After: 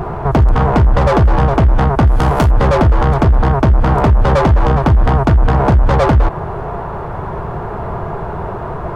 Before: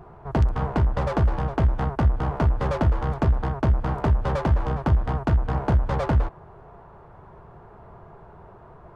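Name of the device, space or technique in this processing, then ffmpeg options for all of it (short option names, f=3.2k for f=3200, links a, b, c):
loud club master: -filter_complex "[0:a]acompressor=threshold=-22dB:ratio=2,asoftclip=type=hard:threshold=-17dB,alimiter=level_in=27dB:limit=-1dB:release=50:level=0:latency=1,asettb=1/sr,asplit=3[a][b][c];[a]atrim=end=2.074[d];[b]atrim=start=2.07:end=2.51,asetpts=PTS-STARTPTS,afade=t=in:d=0.004:c=qsin,afade=t=out:st=0.436:d=0.004:c=qsin,aemphasis=mode=production:type=75fm[e];[c]atrim=start=2.506[f];[d][e]acrossfade=d=0.004:c1=hsin:c2=qsin[g];[g][f]acrossfade=d=0.004:c1=qsin:c2=hsin,volume=-3dB"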